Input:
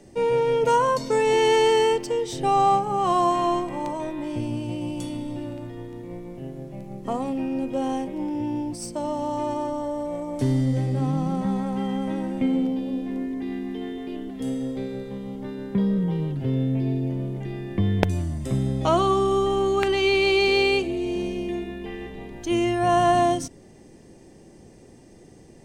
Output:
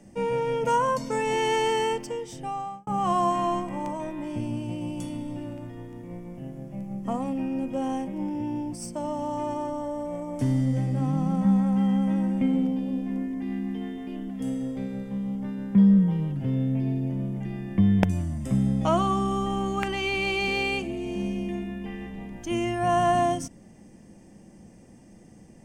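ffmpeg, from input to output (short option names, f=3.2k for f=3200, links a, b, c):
-filter_complex "[0:a]asplit=2[a][b];[a]atrim=end=2.87,asetpts=PTS-STARTPTS,afade=t=out:st=1.96:d=0.91[c];[b]atrim=start=2.87,asetpts=PTS-STARTPTS,afade=t=in:d=0.004:c=hsin[d];[c][d]concat=n=2:v=0:a=1,equalizer=f=200:t=o:w=0.33:g=9,equalizer=f=400:t=o:w=0.33:g=-9,equalizer=f=4k:t=o:w=0.33:g=-11,volume=-2.5dB"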